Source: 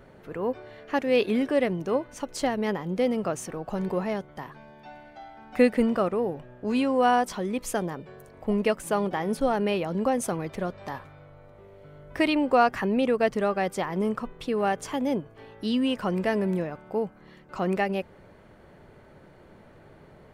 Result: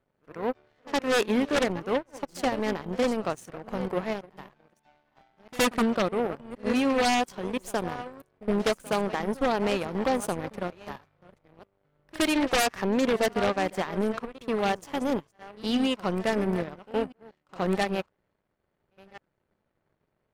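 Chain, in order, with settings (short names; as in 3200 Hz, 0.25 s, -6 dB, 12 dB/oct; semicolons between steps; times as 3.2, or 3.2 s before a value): reverse delay 0.685 s, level -12 dB; power-law curve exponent 2; in parallel at -3.5 dB: sine folder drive 19 dB, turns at -8 dBFS; on the sum: pre-echo 67 ms -20.5 dB; gain -7 dB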